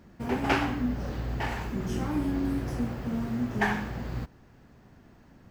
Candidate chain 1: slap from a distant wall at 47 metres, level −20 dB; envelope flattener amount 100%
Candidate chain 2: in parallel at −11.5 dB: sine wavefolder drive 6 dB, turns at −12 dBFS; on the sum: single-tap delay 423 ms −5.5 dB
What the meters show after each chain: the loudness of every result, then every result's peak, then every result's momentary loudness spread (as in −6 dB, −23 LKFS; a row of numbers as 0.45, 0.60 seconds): −22.5, −24.5 LKFS; −8.5, −11.0 dBFS; 1, 9 LU